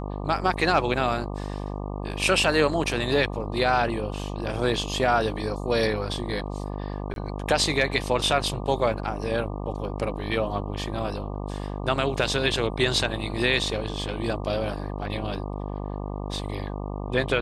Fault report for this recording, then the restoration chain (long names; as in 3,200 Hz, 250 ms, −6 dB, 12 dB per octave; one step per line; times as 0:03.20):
mains buzz 50 Hz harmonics 24 −32 dBFS
0:07.14–0:07.16: drop-out 22 ms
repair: hum removal 50 Hz, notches 24
repair the gap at 0:07.14, 22 ms